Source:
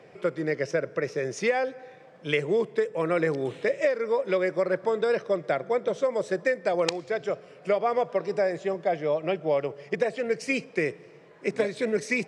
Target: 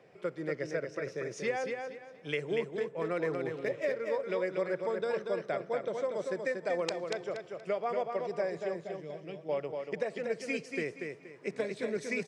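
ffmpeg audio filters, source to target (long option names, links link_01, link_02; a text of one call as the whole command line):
ffmpeg -i in.wav -filter_complex "[0:a]asettb=1/sr,asplit=3[link_01][link_02][link_03];[link_01]atrim=end=2.554[link_04];[link_02]atrim=start=2.55:end=4.03,asetpts=PTS-STARTPTS,afade=type=in:duration=0.004:curve=qsin,afade=type=out:start_time=1.476:duration=0.004:curve=qsin,adynamicsmooth=sensitivity=8:basefreq=4700[link_05];[link_03]atrim=start=4.026[link_06];[link_04][link_05]acrossfade=duration=0.004:curve1=hsin:curve2=qsin[link_07];[link_07][link_06]acrossfade=duration=0.004:curve1=qsin:curve2=hsin,asettb=1/sr,asplit=3[link_08][link_09][link_10];[link_08]atrim=end=8.834[link_11];[link_09]atrim=start=8.83:end=9.49,asetpts=PTS-STARTPTS,afade=type=in:duration=0.004:curve=qsin,afade=type=out:start_time=0.656:duration=0.004:curve=qsin,equalizer=frequency=1000:width_type=o:width=2.9:gain=-14[link_12];[link_10]atrim=start=9.486[link_13];[link_11][link_12]acrossfade=duration=0.004:curve1=hsin:curve2=qsin[link_14];[link_14][link_13]acrossfade=duration=0.004:curve1=qsin:curve2=hsin,aecho=1:1:237|474|711|948:0.562|0.157|0.0441|0.0123,volume=-8.5dB" out.wav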